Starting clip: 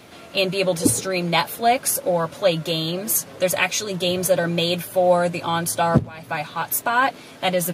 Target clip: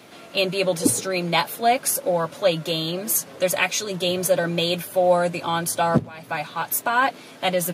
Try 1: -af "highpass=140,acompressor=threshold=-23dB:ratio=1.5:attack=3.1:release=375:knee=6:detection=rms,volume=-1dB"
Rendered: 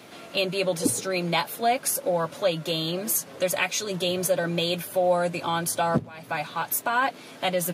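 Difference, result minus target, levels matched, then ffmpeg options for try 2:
compressor: peak gain reduction +5.5 dB
-af "highpass=140,volume=-1dB"

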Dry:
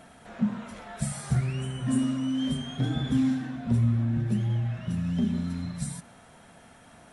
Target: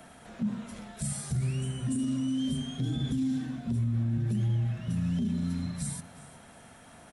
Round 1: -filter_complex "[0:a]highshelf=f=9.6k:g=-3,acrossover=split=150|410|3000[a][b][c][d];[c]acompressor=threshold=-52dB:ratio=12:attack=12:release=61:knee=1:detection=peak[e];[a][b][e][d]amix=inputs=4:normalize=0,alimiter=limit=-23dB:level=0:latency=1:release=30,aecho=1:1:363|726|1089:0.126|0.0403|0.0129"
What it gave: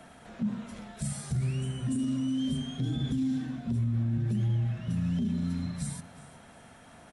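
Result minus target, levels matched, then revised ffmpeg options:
8000 Hz band -3.5 dB
-filter_complex "[0:a]highshelf=f=9.6k:g=6,acrossover=split=150|410|3000[a][b][c][d];[c]acompressor=threshold=-52dB:ratio=12:attack=12:release=61:knee=1:detection=peak[e];[a][b][e][d]amix=inputs=4:normalize=0,alimiter=limit=-23dB:level=0:latency=1:release=30,aecho=1:1:363|726|1089:0.126|0.0403|0.0129"

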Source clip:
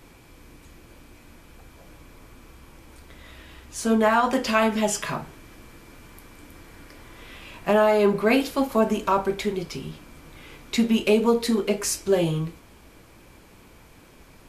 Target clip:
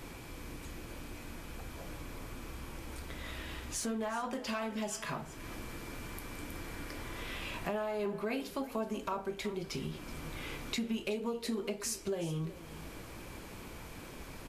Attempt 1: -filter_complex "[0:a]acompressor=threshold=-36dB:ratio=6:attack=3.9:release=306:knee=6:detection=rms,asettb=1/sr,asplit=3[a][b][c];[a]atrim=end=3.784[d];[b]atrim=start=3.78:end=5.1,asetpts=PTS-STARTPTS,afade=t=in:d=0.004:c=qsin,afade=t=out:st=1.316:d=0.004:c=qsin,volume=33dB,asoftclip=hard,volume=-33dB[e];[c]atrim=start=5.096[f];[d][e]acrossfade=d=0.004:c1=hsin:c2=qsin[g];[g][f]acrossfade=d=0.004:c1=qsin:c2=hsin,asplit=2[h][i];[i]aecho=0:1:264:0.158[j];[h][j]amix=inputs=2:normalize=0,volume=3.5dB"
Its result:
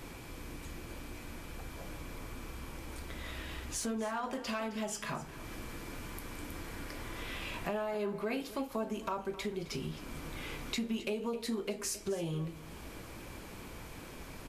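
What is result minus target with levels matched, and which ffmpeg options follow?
echo 0.11 s early
-filter_complex "[0:a]acompressor=threshold=-36dB:ratio=6:attack=3.9:release=306:knee=6:detection=rms,asettb=1/sr,asplit=3[a][b][c];[a]atrim=end=3.784[d];[b]atrim=start=3.78:end=5.1,asetpts=PTS-STARTPTS,afade=t=in:d=0.004:c=qsin,afade=t=out:st=1.316:d=0.004:c=qsin,volume=33dB,asoftclip=hard,volume=-33dB[e];[c]atrim=start=5.096[f];[d][e]acrossfade=d=0.004:c1=hsin:c2=qsin[g];[g][f]acrossfade=d=0.004:c1=qsin:c2=hsin,asplit=2[h][i];[i]aecho=0:1:374:0.158[j];[h][j]amix=inputs=2:normalize=0,volume=3.5dB"

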